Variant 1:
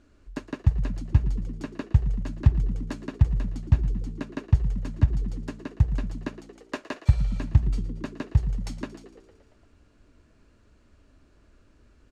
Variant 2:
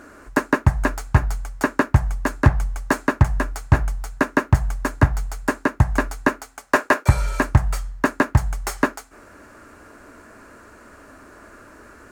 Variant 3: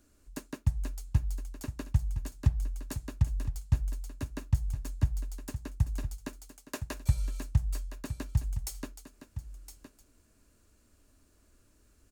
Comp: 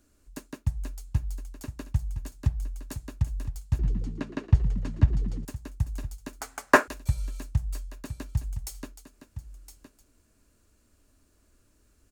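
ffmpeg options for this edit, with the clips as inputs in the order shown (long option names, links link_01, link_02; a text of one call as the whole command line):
ffmpeg -i take0.wav -i take1.wav -i take2.wav -filter_complex "[2:a]asplit=3[link_01][link_02][link_03];[link_01]atrim=end=3.792[link_04];[0:a]atrim=start=3.788:end=5.452[link_05];[link_02]atrim=start=5.448:end=6.412[link_06];[1:a]atrim=start=6.408:end=6.882[link_07];[link_03]atrim=start=6.878[link_08];[link_04][link_05]acrossfade=duration=0.004:curve1=hsin:curve2=hsin[link_09];[link_09][link_06]acrossfade=duration=0.004:curve1=hsin:curve2=hsin[link_10];[link_10][link_07]acrossfade=duration=0.004:curve1=hsin:curve2=hsin[link_11];[link_11][link_08]acrossfade=duration=0.004:curve1=hsin:curve2=hsin" out.wav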